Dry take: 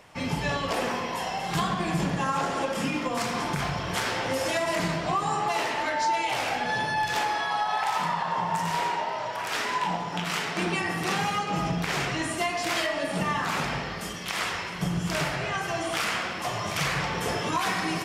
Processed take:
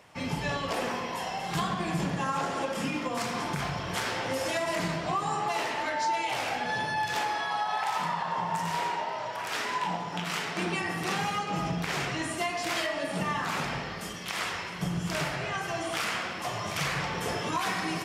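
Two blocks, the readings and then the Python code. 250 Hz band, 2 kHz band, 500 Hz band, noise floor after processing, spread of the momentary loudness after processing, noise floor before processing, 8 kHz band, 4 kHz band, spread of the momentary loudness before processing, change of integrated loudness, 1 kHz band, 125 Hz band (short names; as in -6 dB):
-3.0 dB, -3.0 dB, -3.0 dB, -37 dBFS, 4 LU, -34 dBFS, -3.0 dB, -3.0 dB, 3 LU, -3.0 dB, -3.0 dB, -3.0 dB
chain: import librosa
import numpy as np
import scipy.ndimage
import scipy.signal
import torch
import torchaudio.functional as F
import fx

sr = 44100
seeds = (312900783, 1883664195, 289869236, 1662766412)

y = scipy.signal.sosfilt(scipy.signal.butter(2, 50.0, 'highpass', fs=sr, output='sos'), x)
y = F.gain(torch.from_numpy(y), -3.0).numpy()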